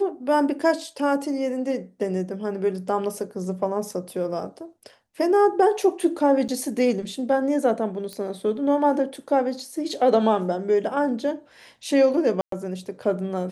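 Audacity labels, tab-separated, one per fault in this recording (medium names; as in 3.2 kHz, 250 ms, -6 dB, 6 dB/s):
6.480000	6.490000	dropout 8.1 ms
8.130000	8.130000	pop -20 dBFS
12.410000	12.520000	dropout 113 ms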